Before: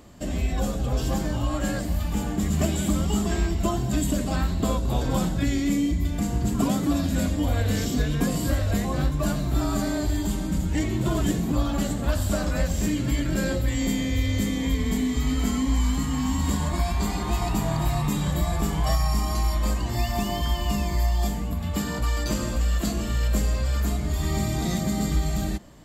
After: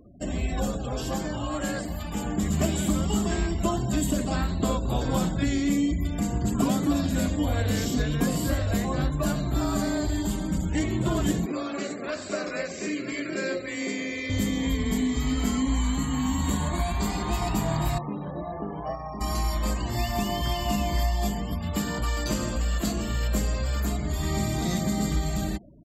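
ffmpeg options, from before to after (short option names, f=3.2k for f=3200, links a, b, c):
-filter_complex "[0:a]asettb=1/sr,asplit=3[a][b][c];[a]atrim=end=0.784[d];[b]atrim=start=0.78:end=2.25,asetpts=PTS-STARTPTS,afade=t=in:d=0.004:c=qsin,afade=t=out:st=1.466:d=0.004:c=qsin,lowshelf=f=180:g=-6.5[e];[c]atrim=start=2.246[f];[d][e]acrossfade=d=0.004:c1=hsin:c2=qsin[g];[g][f]acrossfade=d=0.004:c1=qsin:c2=hsin,asettb=1/sr,asplit=3[h][i][j];[h]atrim=end=11.464[k];[i]atrim=start=11.46:end=14.3,asetpts=PTS-STARTPTS,afade=t=in:d=0.004:c=qsin,afade=t=out:st=2.836:d=0.004:c=qsin,highpass=350,equalizer=f=390:t=q:w=4:g=7,equalizer=f=860:t=q:w=4:g=-9,equalizer=f=2.3k:t=q:w=4:g=7,equalizer=f=3.2k:t=q:w=4:g=-7,lowpass=f=6.8k:w=0.5412,lowpass=f=6.8k:w=1.3066[l];[j]atrim=start=14.296[m];[k][l]acrossfade=d=0.004:c1=hsin:c2=qsin[n];[n][m]acrossfade=d=0.004:c1=qsin:c2=hsin,asettb=1/sr,asplit=3[o][p][q];[o]atrim=end=15.624[r];[p]atrim=start=15.62:end=17.01,asetpts=PTS-STARTPTS,afade=t=in:d=0.004:c=qsin,afade=t=out:st=1.386:d=0.004:c=qsin,asuperstop=centerf=5100:order=4:qfactor=5.5[s];[q]atrim=start=17.006[t];[r][s]acrossfade=d=0.004:c1=hsin:c2=qsin[u];[u][t]acrossfade=d=0.004:c1=qsin:c2=hsin,asettb=1/sr,asplit=3[v][w][x];[v]atrim=end=17.984[y];[w]atrim=start=17.98:end=19.21,asetpts=PTS-STARTPTS,afade=t=in:d=0.004:c=qsin,afade=t=out:st=1.226:d=0.004:c=qsin,bandpass=f=490:t=q:w=0.91[z];[x]atrim=start=19.206[aa];[y][z]acrossfade=d=0.004:c1=hsin:c2=qsin[ab];[ab][aa]acrossfade=d=0.004:c1=qsin:c2=hsin,asplit=2[ac][ad];[ad]afade=t=in:st=19.92:d=0.01,afade=t=out:st=20.51:d=0.01,aecho=0:1:520|1040|1560|2080|2600|3120:0.473151|0.236576|0.118288|0.0591439|0.029572|0.014786[ae];[ac][ae]amix=inputs=2:normalize=0,afftfilt=real='re*gte(hypot(re,im),0.00708)':imag='im*gte(hypot(re,im),0.00708)':win_size=1024:overlap=0.75,lowshelf=f=77:g=-5.5"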